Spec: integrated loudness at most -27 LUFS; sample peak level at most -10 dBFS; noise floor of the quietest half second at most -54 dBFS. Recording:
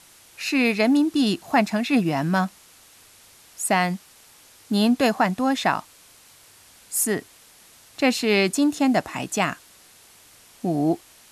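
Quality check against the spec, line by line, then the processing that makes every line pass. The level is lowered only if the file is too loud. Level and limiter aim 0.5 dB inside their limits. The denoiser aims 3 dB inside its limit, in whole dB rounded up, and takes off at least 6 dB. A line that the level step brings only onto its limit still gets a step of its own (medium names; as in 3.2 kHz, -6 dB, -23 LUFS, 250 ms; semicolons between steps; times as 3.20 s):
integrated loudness -22.5 LUFS: fail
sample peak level -6.5 dBFS: fail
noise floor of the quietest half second -52 dBFS: fail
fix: trim -5 dB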